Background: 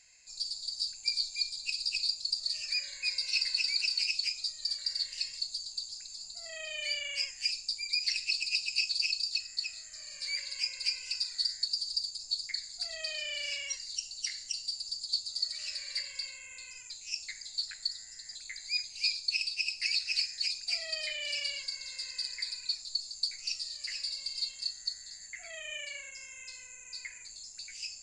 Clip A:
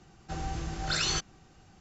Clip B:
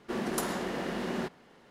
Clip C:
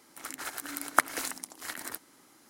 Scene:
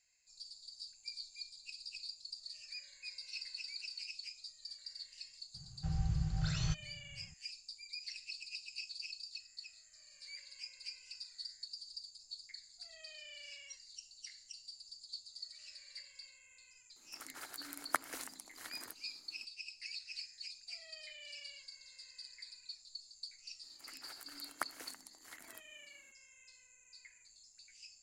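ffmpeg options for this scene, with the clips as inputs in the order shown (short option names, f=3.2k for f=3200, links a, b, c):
-filter_complex "[3:a]asplit=2[a][b];[0:a]volume=-15dB[c];[1:a]lowshelf=f=200:t=q:w=3:g=13.5,atrim=end=1.8,asetpts=PTS-STARTPTS,volume=-14dB,afade=t=in:d=0.004:c=hsin,afade=t=out:st=1.796:d=0.004:c=hsin,adelay=5540[d];[a]atrim=end=2.49,asetpts=PTS-STARTPTS,volume=-11dB,afade=t=in:d=0.004:c=hsin,afade=t=out:st=2.486:d=0.004:c=hsin,adelay=16960[e];[b]atrim=end=2.49,asetpts=PTS-STARTPTS,volume=-16dB,afade=t=in:d=0.004:c=hsin,afade=t=out:st=2.486:d=0.004:c=hsin,adelay=23630[f];[c][d][e][f]amix=inputs=4:normalize=0"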